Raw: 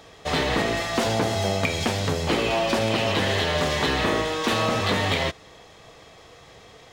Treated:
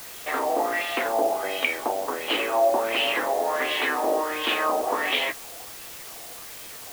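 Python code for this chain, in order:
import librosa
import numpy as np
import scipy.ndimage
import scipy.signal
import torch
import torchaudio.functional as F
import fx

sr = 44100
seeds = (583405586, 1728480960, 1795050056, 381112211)

y = fx.vibrato(x, sr, rate_hz=0.39, depth_cents=44.0)
y = fx.filter_lfo_lowpass(y, sr, shape='sine', hz=1.4, low_hz=700.0, high_hz=3000.0, q=3.9)
y = scipy.signal.sosfilt(scipy.signal.cheby1(4, 1.0, [280.0, 9000.0], 'bandpass', fs=sr, output='sos'), y)
y = fx.doubler(y, sr, ms=16.0, db=-13)
y = fx.quant_dither(y, sr, seeds[0], bits=6, dither='triangular')
y = y * librosa.db_to_amplitude(-4.5)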